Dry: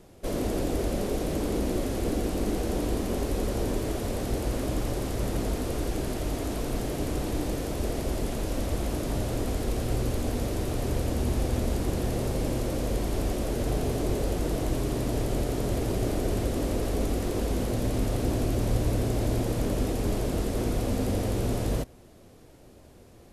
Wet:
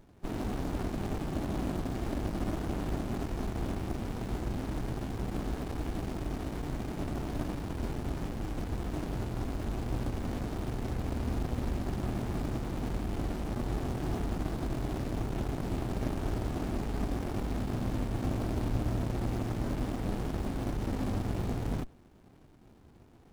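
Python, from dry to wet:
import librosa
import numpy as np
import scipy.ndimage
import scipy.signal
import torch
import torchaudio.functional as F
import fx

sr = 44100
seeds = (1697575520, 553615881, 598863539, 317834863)

y = fx.low_shelf(x, sr, hz=210.0, db=-6.5)
y = fx.running_max(y, sr, window=65)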